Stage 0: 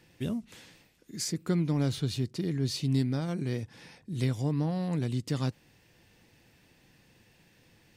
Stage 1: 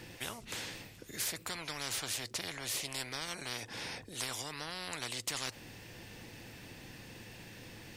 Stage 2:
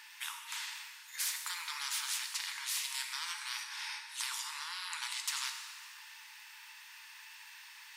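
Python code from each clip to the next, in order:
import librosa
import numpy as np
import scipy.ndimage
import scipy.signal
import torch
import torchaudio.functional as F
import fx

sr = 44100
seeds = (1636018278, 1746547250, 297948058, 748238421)

y1 = fx.peak_eq(x, sr, hz=110.0, db=10.0, octaves=0.46)
y1 = fx.spectral_comp(y1, sr, ratio=10.0)
y1 = F.gain(torch.from_numpy(y1), -6.0).numpy()
y2 = fx.brickwall_highpass(y1, sr, low_hz=840.0)
y2 = fx.rev_plate(y2, sr, seeds[0], rt60_s=1.9, hf_ratio=0.9, predelay_ms=0, drr_db=3.5)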